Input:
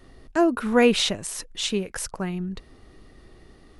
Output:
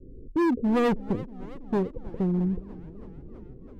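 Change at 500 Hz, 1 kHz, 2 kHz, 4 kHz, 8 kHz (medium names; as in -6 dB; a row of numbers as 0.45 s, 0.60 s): -5.0 dB, -3.5 dB, -9.5 dB, under -20 dB, under -25 dB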